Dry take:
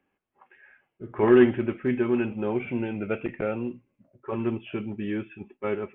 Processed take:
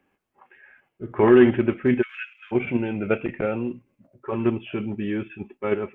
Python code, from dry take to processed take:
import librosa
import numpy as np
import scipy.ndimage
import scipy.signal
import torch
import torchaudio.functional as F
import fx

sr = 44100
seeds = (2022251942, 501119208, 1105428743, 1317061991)

p1 = fx.level_steps(x, sr, step_db=13)
p2 = x + (p1 * librosa.db_to_amplitude(2.5))
y = fx.steep_highpass(p2, sr, hz=1500.0, slope=48, at=(2.01, 2.51), fade=0.02)